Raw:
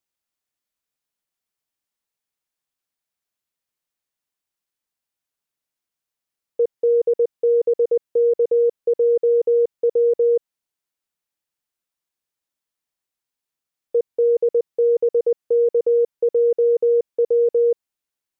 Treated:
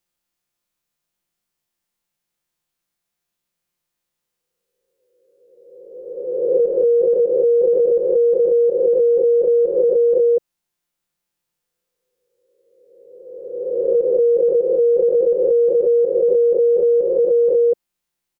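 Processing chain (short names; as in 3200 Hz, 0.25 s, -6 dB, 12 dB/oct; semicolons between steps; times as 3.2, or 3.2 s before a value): spectral swells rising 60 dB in 1.72 s; low shelf 310 Hz +6 dB; comb 5.7 ms, depth 80%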